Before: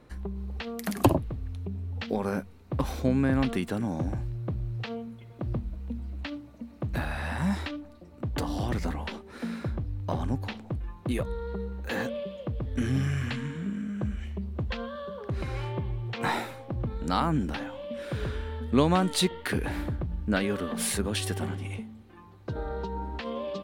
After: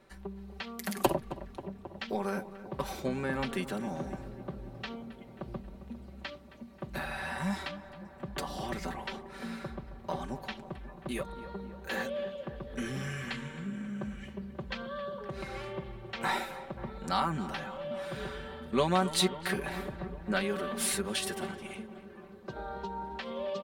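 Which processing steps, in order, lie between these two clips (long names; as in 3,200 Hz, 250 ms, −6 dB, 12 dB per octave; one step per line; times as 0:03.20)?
low-shelf EQ 290 Hz −10.5 dB
comb filter 5.2 ms, depth 76%
feedback echo with a low-pass in the loop 268 ms, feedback 80%, low-pass 2,000 Hz, level −14 dB
level −3 dB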